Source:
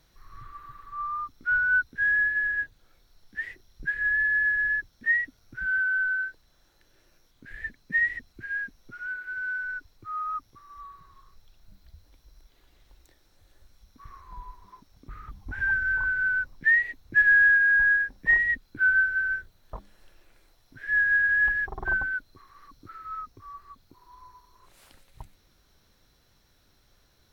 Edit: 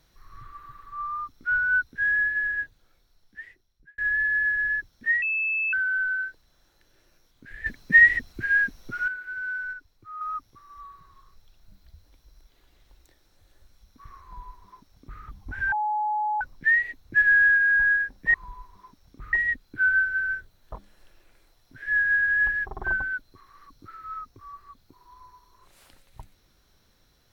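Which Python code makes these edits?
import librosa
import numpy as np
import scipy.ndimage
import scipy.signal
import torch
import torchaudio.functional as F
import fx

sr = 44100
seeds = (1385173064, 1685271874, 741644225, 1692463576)

y = fx.edit(x, sr, fx.fade_out_span(start_s=2.51, length_s=1.47),
    fx.bleep(start_s=5.22, length_s=0.51, hz=2620.0, db=-23.0),
    fx.clip_gain(start_s=7.66, length_s=1.42, db=10.0),
    fx.clip_gain(start_s=9.73, length_s=0.48, db=-5.5),
    fx.duplicate(start_s=14.23, length_s=0.99, to_s=18.34),
    fx.bleep(start_s=15.72, length_s=0.69, hz=847.0, db=-23.0), tone=tone)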